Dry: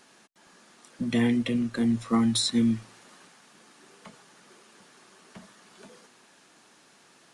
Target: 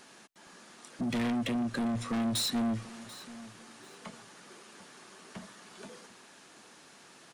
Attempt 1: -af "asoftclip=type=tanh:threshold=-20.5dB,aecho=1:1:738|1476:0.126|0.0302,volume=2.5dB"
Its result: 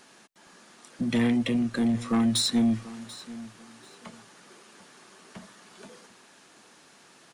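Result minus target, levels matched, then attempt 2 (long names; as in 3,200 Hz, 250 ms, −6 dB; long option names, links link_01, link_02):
soft clipping: distortion −9 dB
-af "asoftclip=type=tanh:threshold=-31dB,aecho=1:1:738|1476:0.126|0.0302,volume=2.5dB"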